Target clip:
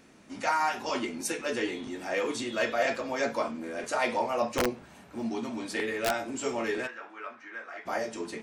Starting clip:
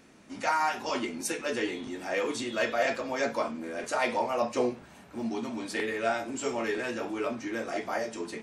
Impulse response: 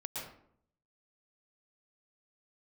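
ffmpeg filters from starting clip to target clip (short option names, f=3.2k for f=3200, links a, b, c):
-filter_complex "[0:a]asettb=1/sr,asplit=3[a][b][c];[a]atrim=end=4.564[d];[b]atrim=start=4.56:end=6.11,asetpts=PTS-STARTPTS,afade=t=in:d=0.004:c=qsin,afade=t=out:st=1.546:d=0.004:c=qsin,aeval=exprs='(mod(8.91*val(0)+1,2)-1)/8.91':c=same[e];[c]atrim=start=6.106[f];[d][e]acrossfade=d=0.004:c1=hsin:c2=qsin[g];[g][f]acrossfade=d=0.004:c1=qsin:c2=hsin,asplit=3[h][i][j];[h]afade=t=out:st=6.86:d=0.02[k];[i]bandpass=f=1.5k:t=q:w=2:csg=0,afade=t=in:st=6.86:d=0.02,afade=t=out:st=7.85:d=0.02[l];[j]afade=t=in:st=7.85:d=0.02[m];[k][l][m]amix=inputs=3:normalize=0"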